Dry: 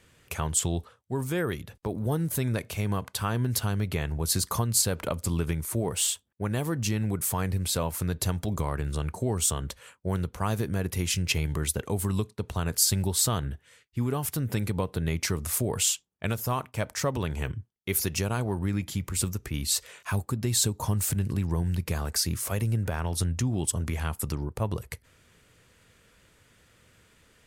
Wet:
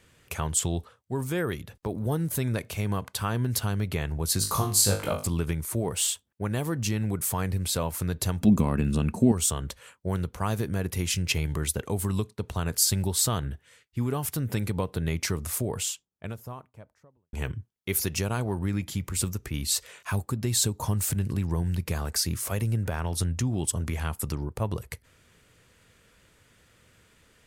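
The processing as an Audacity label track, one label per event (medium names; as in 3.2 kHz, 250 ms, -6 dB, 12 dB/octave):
4.390000	5.270000	flutter echo walls apart 3.4 m, dies away in 0.34 s
8.410000	9.320000	small resonant body resonances 220/2600 Hz, height 17 dB
15.150000	17.330000	studio fade out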